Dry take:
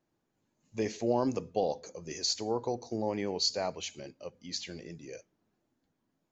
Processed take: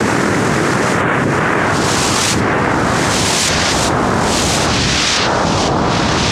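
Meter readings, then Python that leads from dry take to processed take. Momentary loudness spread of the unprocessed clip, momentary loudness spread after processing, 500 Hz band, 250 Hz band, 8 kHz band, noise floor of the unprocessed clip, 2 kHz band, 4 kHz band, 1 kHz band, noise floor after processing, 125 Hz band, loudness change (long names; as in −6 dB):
16 LU, 2 LU, +17.0 dB, +21.0 dB, can't be measured, −81 dBFS, +34.0 dB, +20.5 dB, +25.5 dB, −15 dBFS, +27.5 dB, +20.0 dB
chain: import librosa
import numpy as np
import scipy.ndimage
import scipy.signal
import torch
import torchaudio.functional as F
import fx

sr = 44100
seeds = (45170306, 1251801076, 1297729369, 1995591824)

y = fx.spec_swells(x, sr, rise_s=1.66)
y = fx.noise_vocoder(y, sr, seeds[0], bands=3)
y = fx.echo_pitch(y, sr, ms=781, semitones=-4, count=3, db_per_echo=-3.0)
y = fx.env_flatten(y, sr, amount_pct=100)
y = y * librosa.db_to_amplitude(8.0)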